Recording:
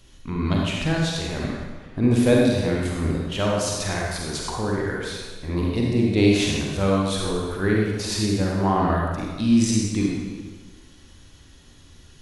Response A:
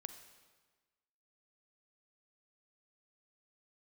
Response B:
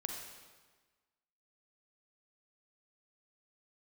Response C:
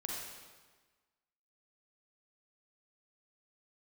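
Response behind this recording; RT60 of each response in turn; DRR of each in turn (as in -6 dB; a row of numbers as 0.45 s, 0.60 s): C; 1.4 s, 1.4 s, 1.4 s; 8.5 dB, 2.0 dB, -2.5 dB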